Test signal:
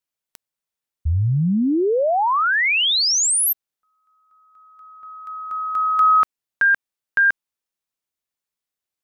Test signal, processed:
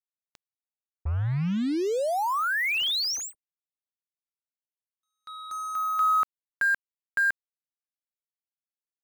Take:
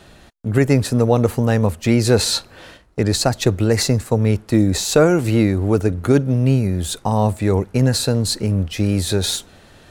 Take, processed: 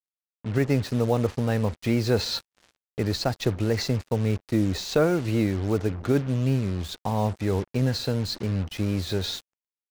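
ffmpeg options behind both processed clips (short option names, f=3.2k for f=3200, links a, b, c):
-af "lowpass=f=5.6k:w=0.5412,lowpass=f=5.6k:w=1.3066,acrusher=bits=4:mix=0:aa=0.5,volume=-8dB"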